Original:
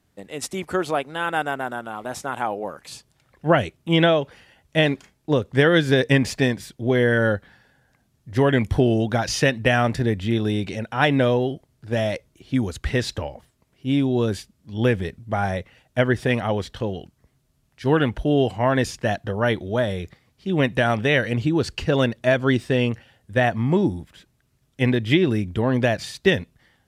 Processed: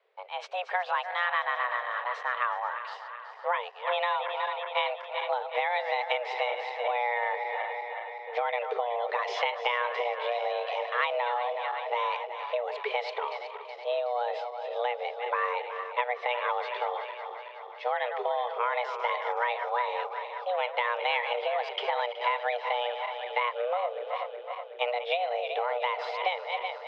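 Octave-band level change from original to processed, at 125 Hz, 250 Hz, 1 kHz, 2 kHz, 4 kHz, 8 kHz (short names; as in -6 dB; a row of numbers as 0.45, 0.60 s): under -40 dB, under -40 dB, +0.5 dB, -6.0 dB, -7.0 dB, under -25 dB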